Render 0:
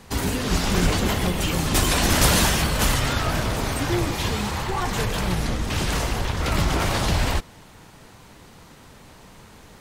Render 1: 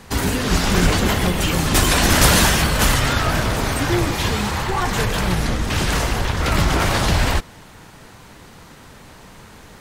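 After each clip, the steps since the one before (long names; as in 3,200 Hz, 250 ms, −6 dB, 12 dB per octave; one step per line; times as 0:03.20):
parametric band 1,600 Hz +2.5 dB
level +4 dB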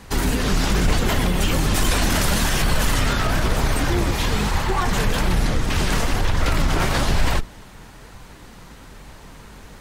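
sub-octave generator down 2 octaves, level +3 dB
brickwall limiter −9 dBFS, peak gain reduction 9.5 dB
flanger 1.1 Hz, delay 0.9 ms, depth 4.7 ms, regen +78%
level +3 dB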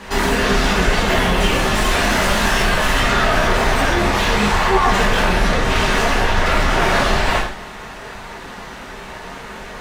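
brickwall limiter −13 dBFS, peak gain reduction 5 dB
mid-hump overdrive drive 16 dB, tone 2,100 Hz, clips at −13 dBFS
reverb whose tail is shaped and stops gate 170 ms falling, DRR −5 dB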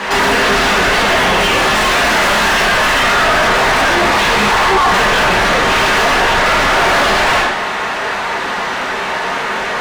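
mid-hump overdrive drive 28 dB, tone 3,000 Hz, clips at −2 dBFS
level −2.5 dB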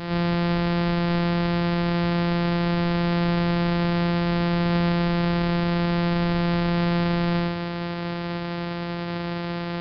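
samples sorted by size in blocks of 256 samples
tuned comb filter 380 Hz, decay 0.86 s, mix 70%
downsampling to 11,025 Hz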